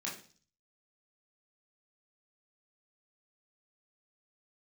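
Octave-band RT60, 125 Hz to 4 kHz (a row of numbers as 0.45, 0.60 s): 0.70, 0.55, 0.45, 0.40, 0.40, 0.55 s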